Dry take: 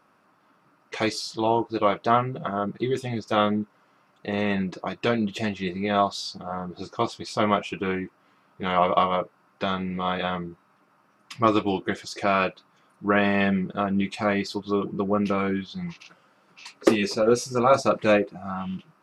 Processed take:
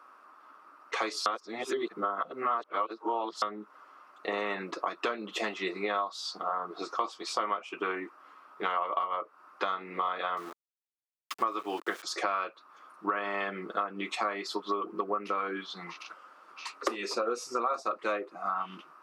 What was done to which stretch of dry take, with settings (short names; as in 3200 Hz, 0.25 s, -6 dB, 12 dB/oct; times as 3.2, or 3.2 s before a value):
1.26–3.42 reverse
10.37–12.03 sample gate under -38 dBFS
whole clip: HPF 300 Hz 24 dB/oct; bell 1200 Hz +12 dB 0.63 oct; compressor 8:1, threshold -28 dBFS